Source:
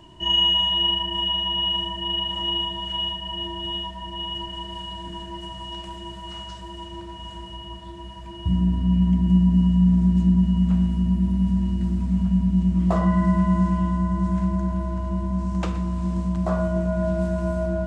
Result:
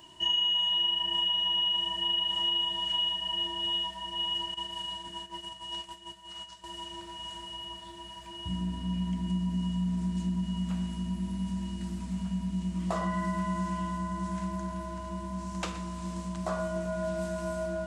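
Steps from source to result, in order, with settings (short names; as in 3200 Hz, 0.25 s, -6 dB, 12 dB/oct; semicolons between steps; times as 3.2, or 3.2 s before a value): 4.54–6.64 gate -34 dBFS, range -12 dB; tilt +3 dB/oct; compressor 5:1, threshold -22 dBFS, peak gain reduction 9.5 dB; gain -4 dB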